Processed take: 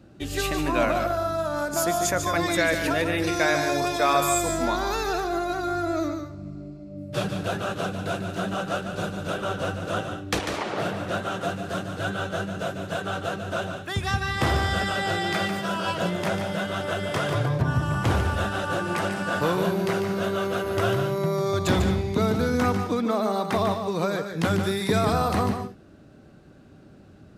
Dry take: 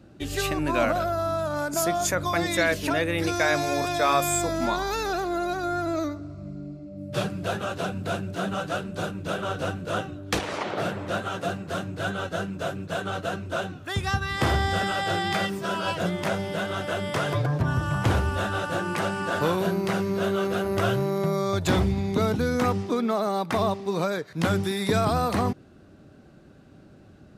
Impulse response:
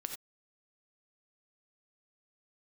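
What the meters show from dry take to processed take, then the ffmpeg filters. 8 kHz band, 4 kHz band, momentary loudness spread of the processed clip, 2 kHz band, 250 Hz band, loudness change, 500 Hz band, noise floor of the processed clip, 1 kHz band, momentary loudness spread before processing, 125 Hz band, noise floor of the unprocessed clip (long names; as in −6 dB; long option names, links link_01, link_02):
+1.0 dB, +1.0 dB, 7 LU, +1.0 dB, +0.5 dB, +0.5 dB, +1.0 dB, −49 dBFS, +0.5 dB, 7 LU, +0.5 dB, −51 dBFS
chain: -filter_complex "[0:a]asplit=2[link_01][link_02];[1:a]atrim=start_sample=2205,atrim=end_sample=3528,adelay=146[link_03];[link_02][link_03]afir=irnorm=-1:irlink=0,volume=-5dB[link_04];[link_01][link_04]amix=inputs=2:normalize=0"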